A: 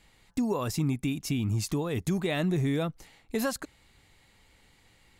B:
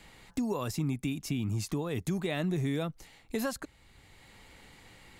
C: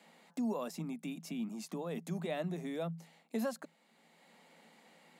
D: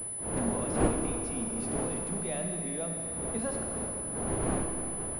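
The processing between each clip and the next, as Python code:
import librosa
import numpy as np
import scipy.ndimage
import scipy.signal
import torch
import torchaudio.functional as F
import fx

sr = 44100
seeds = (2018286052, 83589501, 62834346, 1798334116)

y1 = fx.band_squash(x, sr, depth_pct=40)
y1 = y1 * librosa.db_to_amplitude(-3.5)
y2 = scipy.signal.sosfilt(scipy.signal.cheby1(6, 9, 160.0, 'highpass', fs=sr, output='sos'), y1)
y3 = fx.dmg_wind(y2, sr, seeds[0], corner_hz=500.0, level_db=-37.0)
y3 = fx.rev_schroeder(y3, sr, rt60_s=3.1, comb_ms=27, drr_db=3.0)
y3 = fx.pwm(y3, sr, carrier_hz=10000.0)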